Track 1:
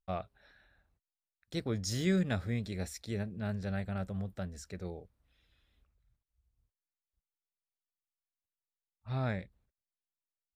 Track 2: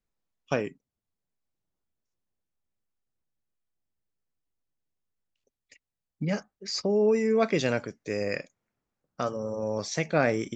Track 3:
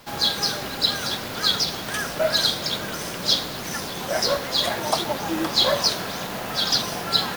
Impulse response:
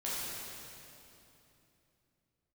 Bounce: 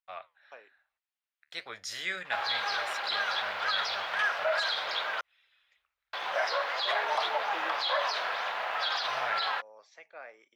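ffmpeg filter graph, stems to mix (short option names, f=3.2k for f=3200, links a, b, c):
-filter_complex "[0:a]tiltshelf=f=690:g=-9.5,flanger=delay=7.5:depth=7.1:regen=-73:speed=1.1:shape=sinusoidal,volume=1.5dB[a];[1:a]highpass=370,volume=-17.5dB[b];[2:a]acrossover=split=480 5100:gain=0.178 1 0.178[c][d][e];[c][d][e]amix=inputs=3:normalize=0,alimiter=limit=-18dB:level=0:latency=1:release=31,adelay=2250,volume=-3dB,asplit=3[f][g][h];[f]atrim=end=5.21,asetpts=PTS-STARTPTS,afade=t=out:st=5.206:d=0.004:c=hsin[i];[g]atrim=start=5.21:end=6.13,asetpts=PTS-STARTPTS,volume=0[j];[h]atrim=start=6.13,asetpts=PTS-STARTPTS,afade=t=in:d=0.004:c=hsin[k];[i][j][k]concat=n=3:v=0:a=1[l];[a][b][l]amix=inputs=3:normalize=0,acrossover=split=580 3300:gain=0.0794 1 0.158[m][n][o];[m][n][o]amix=inputs=3:normalize=0,dynaudnorm=f=160:g=13:m=5dB"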